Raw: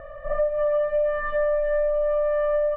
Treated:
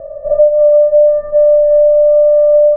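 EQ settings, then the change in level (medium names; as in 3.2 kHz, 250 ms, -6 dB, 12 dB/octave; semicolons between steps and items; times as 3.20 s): resonant low-pass 620 Hz, resonance Q 4.3; peaking EQ 180 Hz +6 dB 2.9 oct; 0.0 dB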